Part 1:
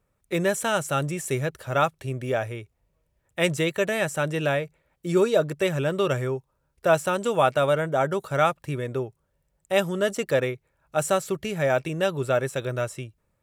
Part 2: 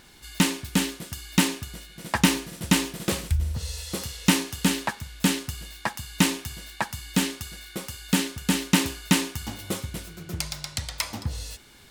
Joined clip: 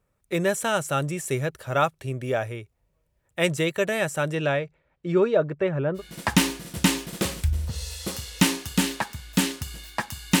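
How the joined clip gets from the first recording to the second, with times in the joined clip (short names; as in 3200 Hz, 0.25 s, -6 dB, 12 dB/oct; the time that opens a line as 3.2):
part 1
4.34–6.02 LPF 6500 Hz -> 1200 Hz
5.98 switch to part 2 from 1.85 s, crossfade 0.08 s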